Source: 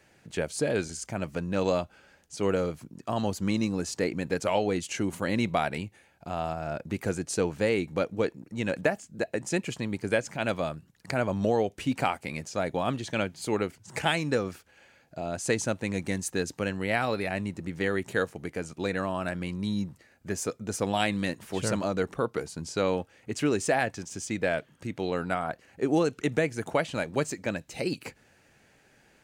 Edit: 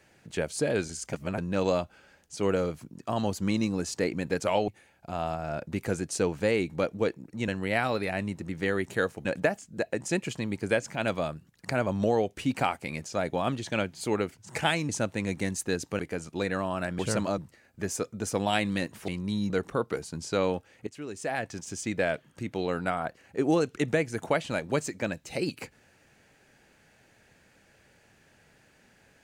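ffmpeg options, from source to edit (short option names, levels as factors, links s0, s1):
-filter_complex "[0:a]asplit=13[s0][s1][s2][s3][s4][s5][s6][s7][s8][s9][s10][s11][s12];[s0]atrim=end=1.132[s13];[s1]atrim=start=1.128:end=1.382,asetpts=PTS-STARTPTS,areverse[s14];[s2]atrim=start=1.378:end=4.682[s15];[s3]atrim=start=5.858:end=8.662[s16];[s4]atrim=start=16.658:end=18.432[s17];[s5]atrim=start=8.658:end=14.302[s18];[s6]atrim=start=15.558:end=16.662[s19];[s7]atrim=start=18.428:end=19.432[s20];[s8]atrim=start=21.548:end=21.942[s21];[s9]atrim=start=19.848:end=21.552[s22];[s10]atrim=start=19.428:end=19.852[s23];[s11]atrim=start=21.938:end=23.31,asetpts=PTS-STARTPTS,afade=t=out:st=1.368:d=0.004:c=hsin:silence=0.16788[s24];[s12]atrim=start=23.31,asetpts=PTS-STARTPTS,afade=t=in:d=0.71:c=qua:silence=0.16788[s25];[s13][s14]acrossfade=d=0.004:c1=hsin:c2=hsin[s26];[s26][s15]acrossfade=d=0.004:c1=hsin:c2=hsin[s27];[s27][s16]acrossfade=d=0.004:c1=hsin:c2=hsin[s28];[s28][s17]acrossfade=d=0.004:c1=hsin:c2=hsin[s29];[s29][s18]acrossfade=d=0.004:c1=hsin:c2=hsin[s30];[s30][s19]acrossfade=d=0.004:c1=hsin:c2=hsin[s31];[s31][s20]acrossfade=d=0.004:c1=hsin:c2=hsin[s32];[s32][s21]acrossfade=d=0.004:c1=hsin:c2=hsin[s33];[s33][s22]acrossfade=d=0.004:c1=hsin:c2=hsin[s34];[s34][s23]acrossfade=d=0.004:c1=hsin:c2=hsin[s35];[s24][s25]concat=n=2:v=0:a=1[s36];[s35][s36]acrossfade=d=0.004:c1=hsin:c2=hsin"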